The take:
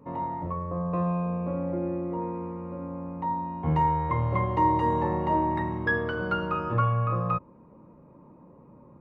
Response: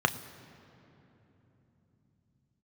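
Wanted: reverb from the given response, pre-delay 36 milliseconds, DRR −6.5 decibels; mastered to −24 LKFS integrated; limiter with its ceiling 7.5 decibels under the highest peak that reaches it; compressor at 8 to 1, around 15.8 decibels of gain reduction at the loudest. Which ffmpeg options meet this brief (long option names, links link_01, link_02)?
-filter_complex "[0:a]acompressor=threshold=-36dB:ratio=8,alimiter=level_in=9.5dB:limit=-24dB:level=0:latency=1,volume=-9.5dB,asplit=2[link_01][link_02];[1:a]atrim=start_sample=2205,adelay=36[link_03];[link_02][link_03]afir=irnorm=-1:irlink=0,volume=-5.5dB[link_04];[link_01][link_04]amix=inputs=2:normalize=0,volume=11dB"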